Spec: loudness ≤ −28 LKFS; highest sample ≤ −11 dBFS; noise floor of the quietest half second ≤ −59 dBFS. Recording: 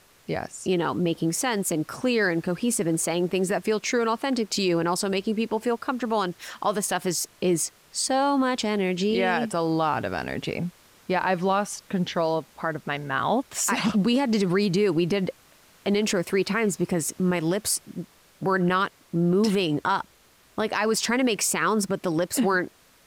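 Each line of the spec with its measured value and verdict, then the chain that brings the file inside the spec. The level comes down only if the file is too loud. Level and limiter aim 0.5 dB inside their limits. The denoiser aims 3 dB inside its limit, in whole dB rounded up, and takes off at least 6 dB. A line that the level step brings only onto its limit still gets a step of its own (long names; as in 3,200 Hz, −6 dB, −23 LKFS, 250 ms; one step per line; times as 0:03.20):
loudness −25.0 LKFS: out of spec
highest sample −12.5 dBFS: in spec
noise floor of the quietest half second −58 dBFS: out of spec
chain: level −3.5 dB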